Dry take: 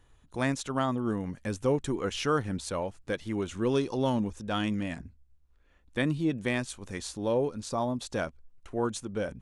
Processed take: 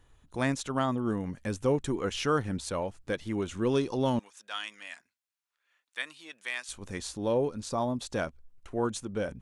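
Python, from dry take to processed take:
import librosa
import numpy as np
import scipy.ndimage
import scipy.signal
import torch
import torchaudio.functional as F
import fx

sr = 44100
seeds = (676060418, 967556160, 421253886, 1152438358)

y = fx.highpass(x, sr, hz=1400.0, slope=12, at=(4.19, 6.69))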